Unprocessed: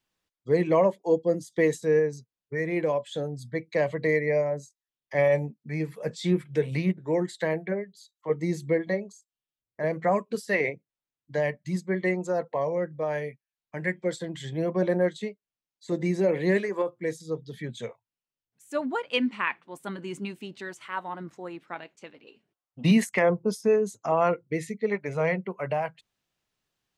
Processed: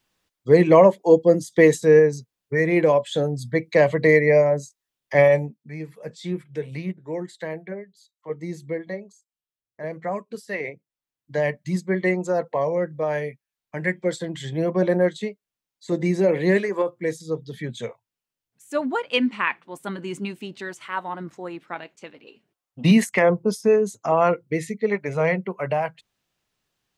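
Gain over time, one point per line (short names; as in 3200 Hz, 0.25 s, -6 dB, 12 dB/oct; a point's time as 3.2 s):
5.16 s +8.5 dB
5.76 s -4 dB
10.62 s -4 dB
11.5 s +4.5 dB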